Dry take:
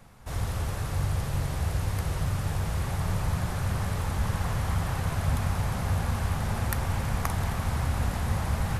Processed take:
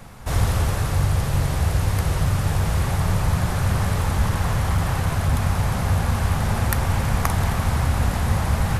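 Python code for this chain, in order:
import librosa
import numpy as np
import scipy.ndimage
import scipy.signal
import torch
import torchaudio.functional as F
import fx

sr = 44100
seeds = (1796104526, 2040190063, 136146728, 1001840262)

y = fx.rider(x, sr, range_db=4, speed_s=0.5)
y = fx.clip_hard(y, sr, threshold_db=-21.5, at=(4.25, 5.34))
y = y * librosa.db_to_amplitude(7.5)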